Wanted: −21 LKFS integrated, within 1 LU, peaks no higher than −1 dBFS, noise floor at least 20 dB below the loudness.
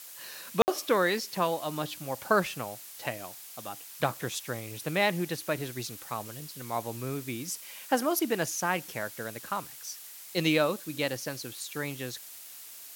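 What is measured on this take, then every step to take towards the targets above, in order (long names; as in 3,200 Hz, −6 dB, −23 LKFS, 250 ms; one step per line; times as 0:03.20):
number of dropouts 1; longest dropout 59 ms; background noise floor −47 dBFS; target noise floor −52 dBFS; integrated loudness −31.5 LKFS; sample peak −8.5 dBFS; target loudness −21.0 LKFS
→ repair the gap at 0:00.62, 59 ms
broadband denoise 6 dB, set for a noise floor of −47 dBFS
level +10.5 dB
brickwall limiter −1 dBFS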